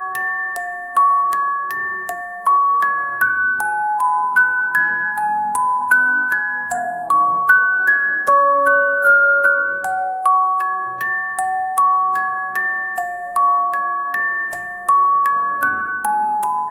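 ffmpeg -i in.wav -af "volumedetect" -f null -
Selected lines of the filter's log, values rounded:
mean_volume: -17.5 dB
max_volume: -2.0 dB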